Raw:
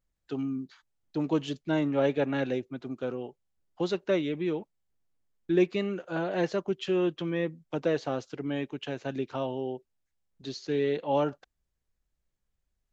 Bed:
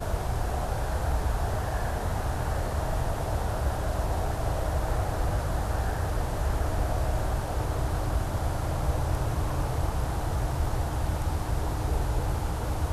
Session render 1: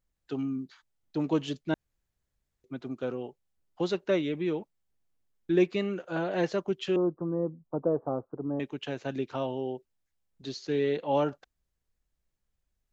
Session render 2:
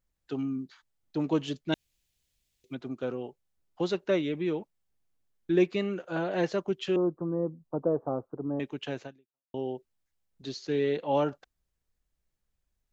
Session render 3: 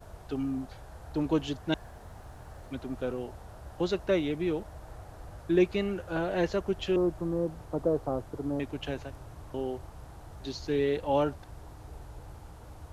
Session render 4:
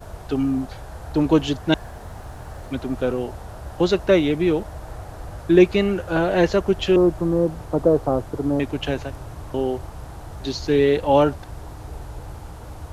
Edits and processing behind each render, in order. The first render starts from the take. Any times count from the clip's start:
1.74–2.64 s: room tone; 6.96–8.60 s: steep low-pass 1.2 kHz 48 dB/octave
1.72–2.75 s: resonant high shelf 2 kHz +10.5 dB, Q 1.5; 9.03–9.54 s: fade out exponential
add bed -18 dB
trim +10.5 dB

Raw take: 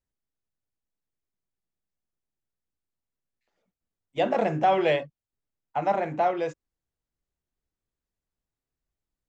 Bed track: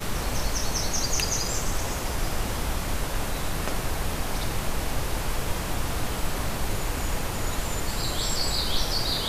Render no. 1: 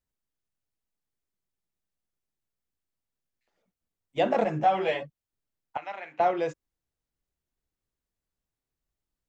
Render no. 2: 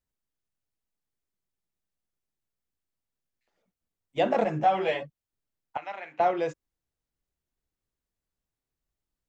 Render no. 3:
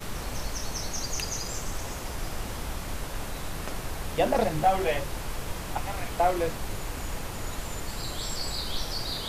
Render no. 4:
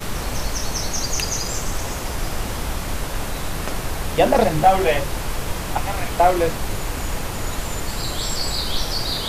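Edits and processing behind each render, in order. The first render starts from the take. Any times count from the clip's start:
4.44–5.02 s: three-phase chorus; 5.77–6.20 s: band-pass filter 2.6 kHz, Q 1.5
no audible change
add bed track -6 dB
trim +8.5 dB

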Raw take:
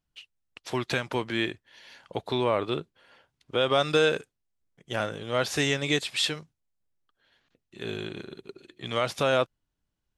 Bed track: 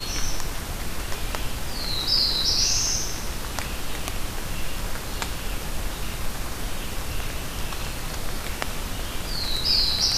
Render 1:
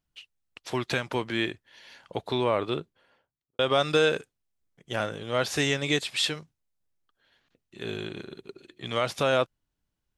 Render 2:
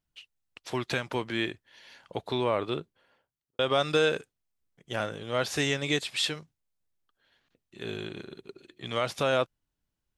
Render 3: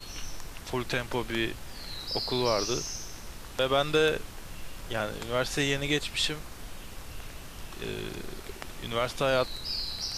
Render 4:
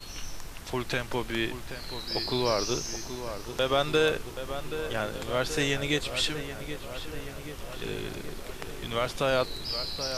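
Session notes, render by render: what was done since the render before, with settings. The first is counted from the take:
2.68–3.59 s: studio fade out
trim -2 dB
add bed track -12.5 dB
filtered feedback delay 778 ms, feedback 69%, low-pass 2.7 kHz, level -10 dB

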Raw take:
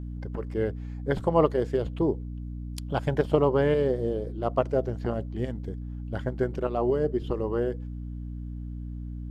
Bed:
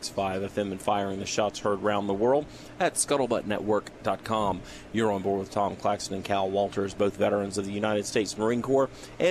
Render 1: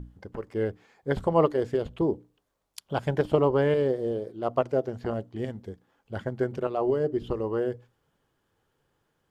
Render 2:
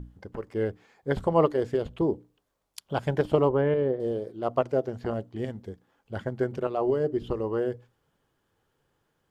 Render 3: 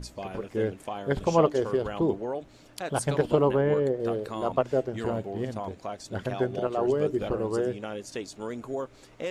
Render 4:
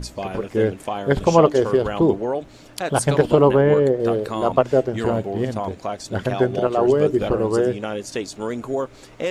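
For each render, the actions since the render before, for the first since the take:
hum notches 60/120/180/240/300 Hz
3.49–4.00 s: distance through air 390 m
add bed -9.5 dB
trim +8.5 dB; peak limiter -2 dBFS, peak gain reduction 2 dB

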